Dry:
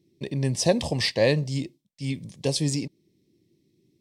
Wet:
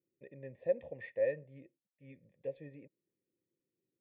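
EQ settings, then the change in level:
formant resonators in series e
−7.5 dB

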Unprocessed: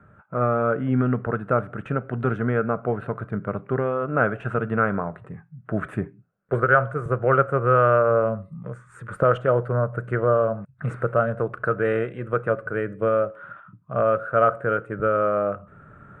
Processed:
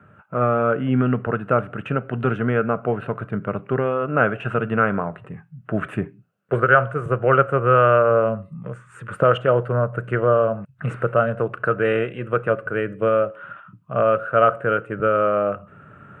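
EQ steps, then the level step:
high-pass filter 85 Hz
parametric band 2,800 Hz +11 dB 0.39 octaves
+2.5 dB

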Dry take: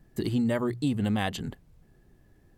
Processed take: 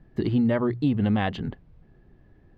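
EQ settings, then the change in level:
high-frequency loss of the air 280 metres
+4.5 dB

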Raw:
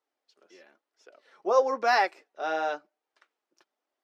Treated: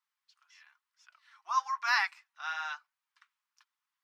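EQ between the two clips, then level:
elliptic high-pass filter 1,000 Hz, stop band 50 dB
0.0 dB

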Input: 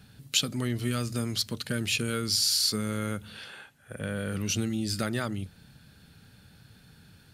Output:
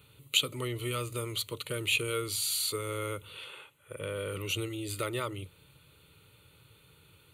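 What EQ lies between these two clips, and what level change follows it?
high-pass filter 160 Hz 6 dB per octave
phaser with its sweep stopped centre 1,100 Hz, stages 8
+2.5 dB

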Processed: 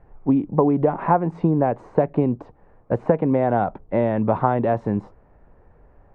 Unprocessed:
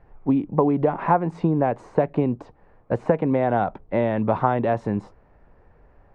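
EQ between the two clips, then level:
high-shelf EQ 2,600 Hz −12 dB
+2.0 dB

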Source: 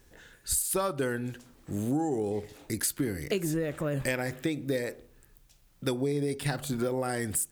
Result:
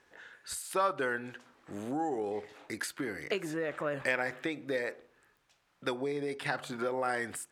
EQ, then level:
resonant band-pass 1,300 Hz, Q 0.8
+4.0 dB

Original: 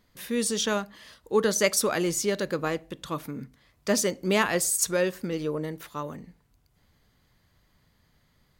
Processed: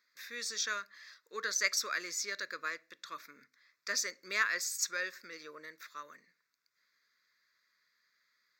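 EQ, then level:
high-pass filter 1,200 Hz 12 dB per octave
high-shelf EQ 7,500 Hz −9 dB
phaser with its sweep stopped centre 3,000 Hz, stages 6
0.0 dB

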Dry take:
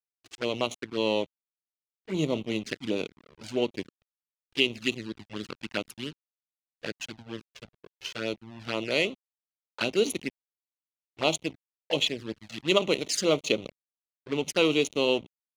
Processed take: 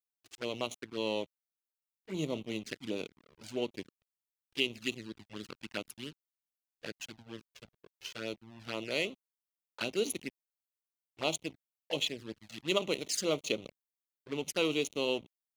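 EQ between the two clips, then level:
high-shelf EQ 9,500 Hz +10.5 dB
−7.5 dB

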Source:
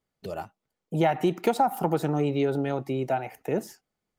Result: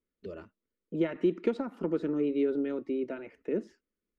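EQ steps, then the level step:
head-to-tape spacing loss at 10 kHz 33 dB
phaser with its sweep stopped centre 320 Hz, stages 4
0.0 dB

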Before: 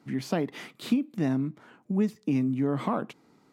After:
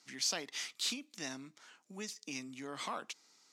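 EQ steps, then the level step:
resonant band-pass 6,000 Hz, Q 2
+13.0 dB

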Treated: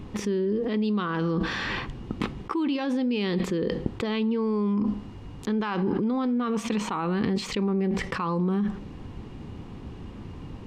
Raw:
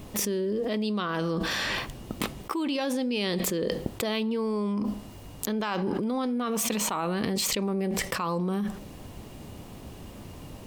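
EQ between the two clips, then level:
head-to-tape spacing loss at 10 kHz 24 dB
parametric band 620 Hz −11.5 dB 0.41 octaves
+4.5 dB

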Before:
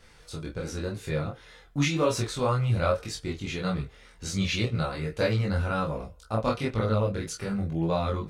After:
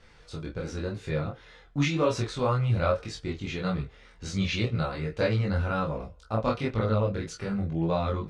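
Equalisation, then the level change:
high-frequency loss of the air 83 metres
0.0 dB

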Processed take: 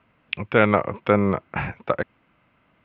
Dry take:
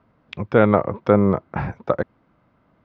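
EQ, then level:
low-pass with resonance 2,700 Hz, resonance Q 3.1
high-frequency loss of the air 89 metres
high-shelf EQ 2,000 Hz +11 dB
−4.0 dB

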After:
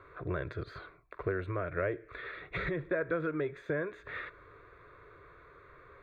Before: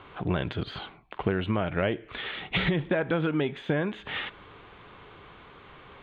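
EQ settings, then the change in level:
phaser with its sweep stopped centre 820 Hz, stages 6
−3.5 dB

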